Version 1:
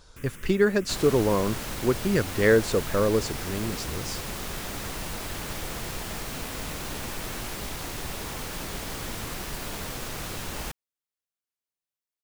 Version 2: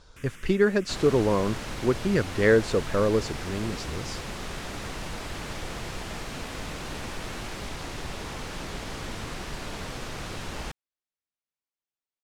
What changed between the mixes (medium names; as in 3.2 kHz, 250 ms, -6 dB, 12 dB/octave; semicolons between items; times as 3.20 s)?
first sound: add tilt shelf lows -6 dB, about 1.4 kHz; master: add distance through air 61 m